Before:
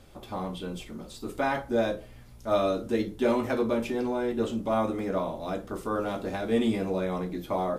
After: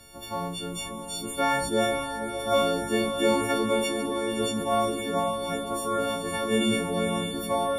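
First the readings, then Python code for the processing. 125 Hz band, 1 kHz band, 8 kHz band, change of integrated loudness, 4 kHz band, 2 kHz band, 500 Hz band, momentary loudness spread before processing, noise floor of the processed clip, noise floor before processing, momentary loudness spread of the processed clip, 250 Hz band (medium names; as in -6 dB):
+1.0 dB, +4.5 dB, no reading, +2.5 dB, +11.5 dB, +5.5 dB, +1.5 dB, 11 LU, -37 dBFS, -48 dBFS, 8 LU, +0.5 dB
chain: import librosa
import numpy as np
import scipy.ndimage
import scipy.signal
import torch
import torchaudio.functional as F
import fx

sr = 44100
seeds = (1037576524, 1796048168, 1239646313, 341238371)

y = fx.freq_snap(x, sr, grid_st=4)
y = fx.echo_diffused(y, sr, ms=544, feedback_pct=46, wet_db=-7.0)
y = fx.sustainer(y, sr, db_per_s=51.0)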